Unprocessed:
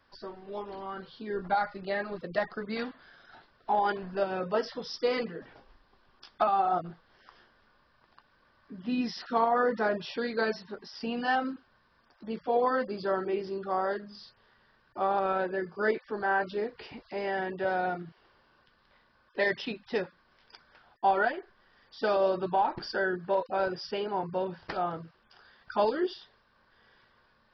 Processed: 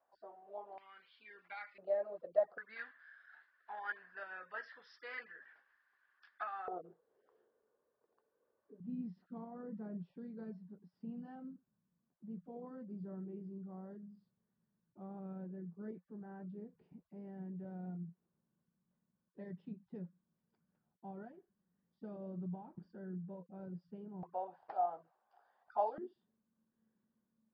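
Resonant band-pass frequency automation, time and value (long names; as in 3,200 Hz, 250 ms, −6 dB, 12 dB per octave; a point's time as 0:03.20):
resonant band-pass, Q 6.4
700 Hz
from 0:00.78 2,300 Hz
from 0:01.78 610 Hz
from 0:02.58 1,700 Hz
from 0:06.68 450 Hz
from 0:08.80 180 Hz
from 0:24.23 750 Hz
from 0:25.98 210 Hz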